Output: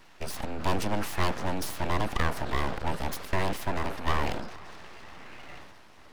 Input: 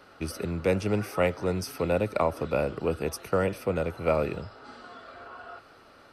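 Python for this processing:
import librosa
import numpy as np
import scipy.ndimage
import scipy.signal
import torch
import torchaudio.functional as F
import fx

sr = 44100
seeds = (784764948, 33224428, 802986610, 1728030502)

y = fx.echo_filtered(x, sr, ms=477, feedback_pct=72, hz=1500.0, wet_db=-22.0)
y = fx.transient(y, sr, attack_db=0, sustain_db=7)
y = np.abs(y)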